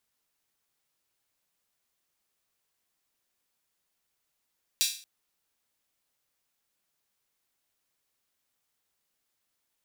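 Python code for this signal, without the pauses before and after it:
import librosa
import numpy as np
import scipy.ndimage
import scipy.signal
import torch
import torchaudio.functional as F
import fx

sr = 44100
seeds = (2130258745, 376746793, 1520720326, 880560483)

y = fx.drum_hat_open(sr, length_s=0.23, from_hz=3600.0, decay_s=0.42)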